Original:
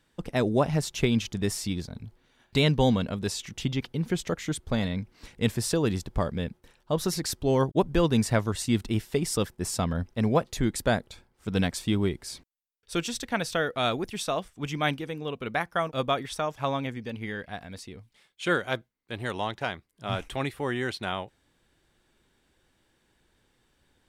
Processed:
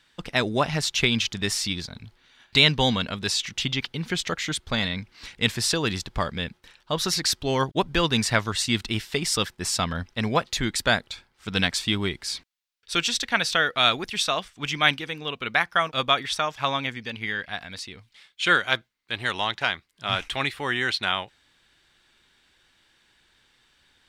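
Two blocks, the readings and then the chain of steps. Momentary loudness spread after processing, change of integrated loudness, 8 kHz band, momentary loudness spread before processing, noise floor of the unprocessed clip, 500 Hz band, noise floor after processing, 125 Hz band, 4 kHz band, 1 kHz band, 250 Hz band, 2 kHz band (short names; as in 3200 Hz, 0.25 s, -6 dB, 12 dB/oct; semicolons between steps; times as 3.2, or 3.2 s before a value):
10 LU, +4.0 dB, +5.5 dB, 11 LU, -71 dBFS, -1.5 dB, -66 dBFS, -2.0 dB, +11.0 dB, +4.5 dB, -2.0 dB, +9.0 dB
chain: EQ curve 510 Hz 0 dB, 1400 Hz +10 dB, 2200 Hz +12 dB, 4100 Hz +14 dB, 11000 Hz +3 dB; gain -2 dB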